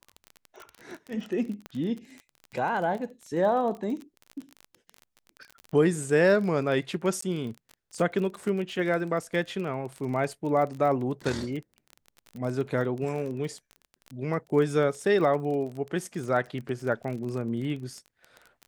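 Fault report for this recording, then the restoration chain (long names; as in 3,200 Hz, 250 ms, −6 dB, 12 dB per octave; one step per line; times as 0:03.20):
surface crackle 28 per second −33 dBFS
0:01.66: click −23 dBFS
0:07.21–0:07.22: drop-out 14 ms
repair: click removal
repair the gap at 0:07.21, 14 ms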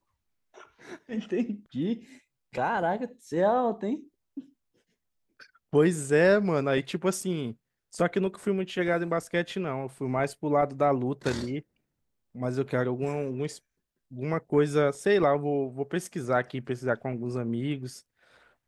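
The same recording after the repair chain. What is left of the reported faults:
0:01.66: click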